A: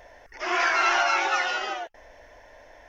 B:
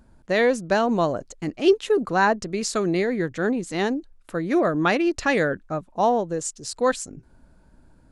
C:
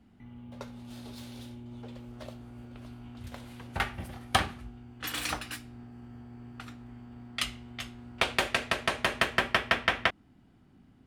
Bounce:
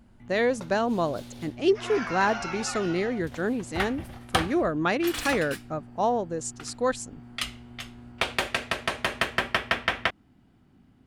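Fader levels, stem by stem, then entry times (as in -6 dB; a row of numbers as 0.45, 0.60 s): -12.0, -4.5, +0.5 dB; 1.35, 0.00, 0.00 s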